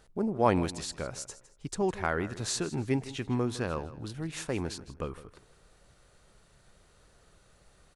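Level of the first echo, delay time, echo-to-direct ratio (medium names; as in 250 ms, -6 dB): -16.0 dB, 159 ms, -15.5 dB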